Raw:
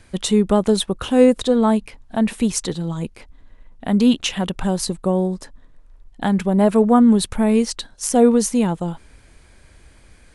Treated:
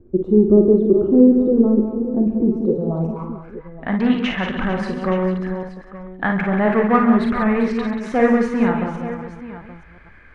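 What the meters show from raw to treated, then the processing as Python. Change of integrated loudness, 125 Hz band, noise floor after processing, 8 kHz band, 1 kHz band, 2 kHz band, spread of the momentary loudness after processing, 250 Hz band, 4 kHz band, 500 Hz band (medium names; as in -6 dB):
+0.5 dB, +0.5 dB, -44 dBFS, under -25 dB, +1.0 dB, +7.5 dB, 18 LU, +1.0 dB, -9.0 dB, +1.5 dB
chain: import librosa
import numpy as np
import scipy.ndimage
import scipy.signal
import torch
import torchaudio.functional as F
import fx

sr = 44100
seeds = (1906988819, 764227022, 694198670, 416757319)

p1 = fx.reverse_delay(x, sr, ms=256, wet_db=-10)
p2 = fx.peak_eq(p1, sr, hz=1200.0, db=5.5, octaves=0.29)
p3 = fx.notch(p2, sr, hz=1900.0, q=6.6)
p4 = 10.0 ** (-17.0 / 20.0) * (np.abs((p3 / 10.0 ** (-17.0 / 20.0) + 3.0) % 4.0 - 2.0) - 1.0)
p5 = p3 + F.gain(torch.from_numpy(p4), -10.5).numpy()
p6 = fx.filter_sweep_lowpass(p5, sr, from_hz=360.0, to_hz=1900.0, start_s=2.53, end_s=3.62, q=6.6)
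p7 = p6 + fx.echo_multitap(p6, sr, ms=(43, 56, 136, 184, 448, 874), db=(-8.5, -7.5, -11.5, -9.5, -15.0, -14.5), dry=0)
y = F.gain(torch.from_numpy(p7), -4.0).numpy()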